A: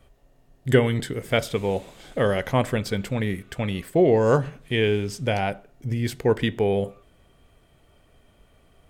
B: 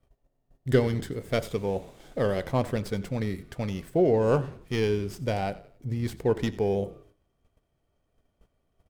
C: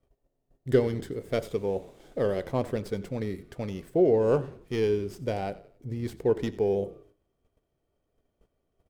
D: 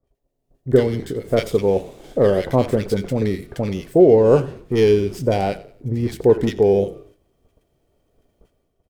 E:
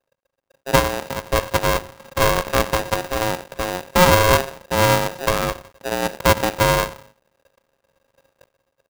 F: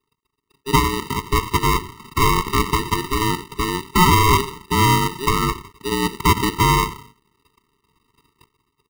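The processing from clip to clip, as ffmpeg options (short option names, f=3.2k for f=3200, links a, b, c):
-filter_complex "[0:a]agate=range=-12dB:threshold=-53dB:ratio=16:detection=peak,acrossover=split=1200[a][b];[b]aeval=exprs='max(val(0),0)':c=same[c];[a][c]amix=inputs=2:normalize=0,asplit=4[d][e][f][g];[e]adelay=91,afreqshift=-31,volume=-18.5dB[h];[f]adelay=182,afreqshift=-62,volume=-26.7dB[i];[g]adelay=273,afreqshift=-93,volume=-34.9dB[j];[d][h][i][j]amix=inputs=4:normalize=0,volume=-4dB"
-af "equalizer=f=400:t=o:w=1.2:g=6.5,volume=-5dB"
-filter_complex "[0:a]acrossover=split=1400[a][b];[b]adelay=40[c];[a][c]amix=inputs=2:normalize=0,dynaudnorm=f=130:g=7:m=12dB"
-af "lowpass=f=1.2k:p=1,aeval=exprs='max(val(0),0)':c=same,aeval=exprs='val(0)*sgn(sin(2*PI*540*n/s))':c=same,volume=1dB"
-filter_complex "[0:a]asplit=2[a][b];[b]alimiter=limit=-13dB:level=0:latency=1:release=75,volume=2.5dB[c];[a][c]amix=inputs=2:normalize=0,afftfilt=real='re*eq(mod(floor(b*sr/1024/450),2),0)':imag='im*eq(mod(floor(b*sr/1024/450),2),0)':win_size=1024:overlap=0.75,volume=-1dB"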